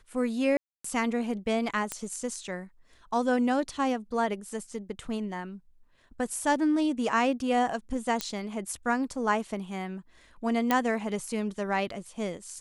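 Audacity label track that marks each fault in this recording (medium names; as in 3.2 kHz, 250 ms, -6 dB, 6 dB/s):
0.570000	0.840000	dropout 274 ms
1.920000	1.920000	pop -16 dBFS
8.210000	8.210000	pop -12 dBFS
10.710000	10.710000	pop -10 dBFS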